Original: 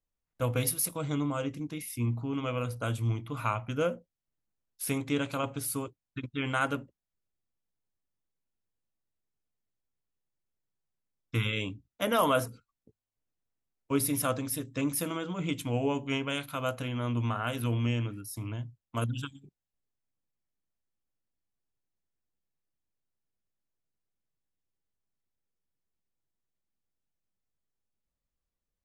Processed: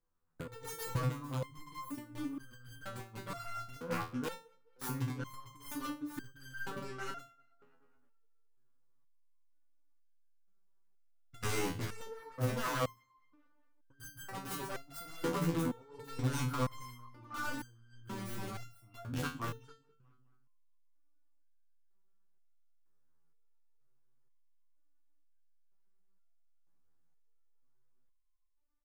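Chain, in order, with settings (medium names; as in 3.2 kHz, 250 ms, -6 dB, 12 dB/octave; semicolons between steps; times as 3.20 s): self-modulated delay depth 0.41 ms; resonant high shelf 1.8 kHz -9.5 dB, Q 1.5; hum notches 50/100/150 Hz; on a send: delay 449 ms -10 dB; on the sum: compressor with a negative ratio -35 dBFS, ratio -0.5; in parallel at -5 dB: integer overflow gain 29 dB; on the sum: peaking EQ 650 Hz -10 dB 0.25 oct; tape echo 212 ms, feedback 51%, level -22.5 dB, low-pass 3.9 kHz; flange 1.8 Hz, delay 5.8 ms, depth 2.7 ms, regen -48%; resonator arpeggio 2.1 Hz 83–1600 Hz; trim +12.5 dB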